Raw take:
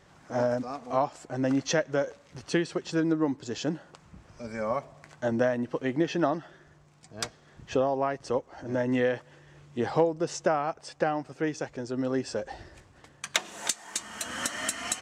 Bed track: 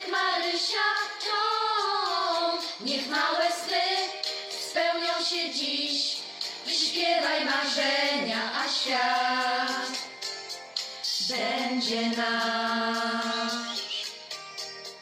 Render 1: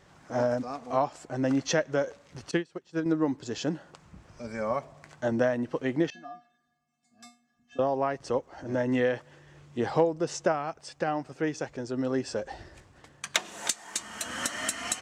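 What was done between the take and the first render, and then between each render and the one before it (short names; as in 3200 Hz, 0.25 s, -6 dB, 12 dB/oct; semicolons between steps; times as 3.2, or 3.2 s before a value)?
2.51–3.06 upward expander 2.5:1, over -35 dBFS; 6.1–7.79 resonator 240 Hz, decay 0.3 s, harmonics odd, mix 100%; 10.52–11.08 bell 660 Hz -4 dB 2.8 oct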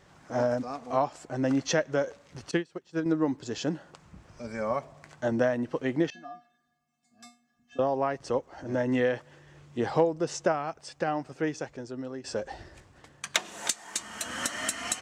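11.43–12.24 fade out, to -13 dB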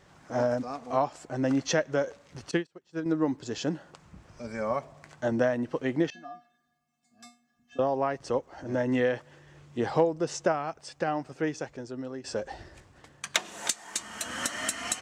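2.67–3.19 fade in, from -15 dB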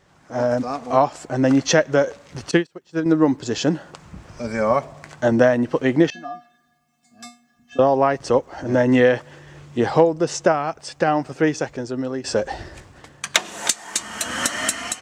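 AGC gain up to 11.5 dB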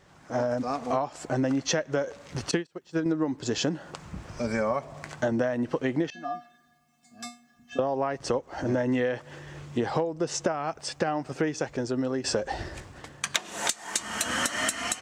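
compressor 6:1, threshold -24 dBFS, peak gain reduction 14.5 dB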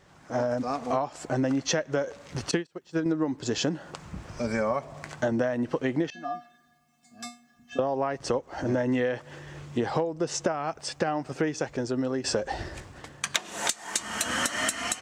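nothing audible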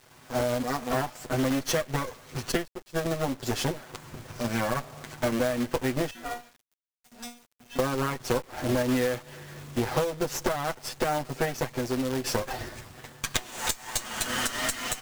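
minimum comb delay 8 ms; companded quantiser 4-bit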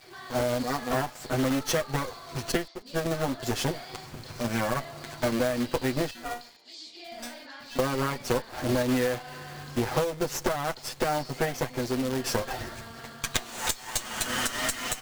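add bed track -18.5 dB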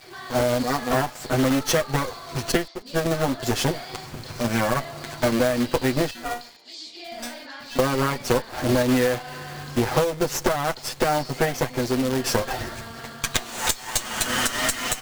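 gain +5.5 dB; limiter -2 dBFS, peak gain reduction 1.5 dB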